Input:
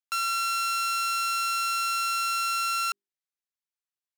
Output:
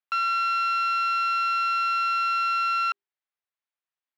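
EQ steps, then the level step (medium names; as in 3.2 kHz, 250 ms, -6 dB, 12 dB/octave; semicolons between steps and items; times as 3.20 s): high-pass 660 Hz 12 dB/octave; distance through air 310 m; +6.5 dB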